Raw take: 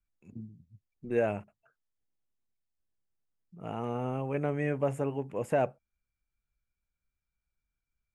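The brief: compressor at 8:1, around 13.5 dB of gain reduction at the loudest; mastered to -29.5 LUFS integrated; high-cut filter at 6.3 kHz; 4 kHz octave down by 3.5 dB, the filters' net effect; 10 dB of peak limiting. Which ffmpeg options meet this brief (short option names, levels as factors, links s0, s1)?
-af "lowpass=6300,equalizer=f=4000:t=o:g=-6,acompressor=threshold=0.0141:ratio=8,volume=8.41,alimiter=limit=0.119:level=0:latency=1"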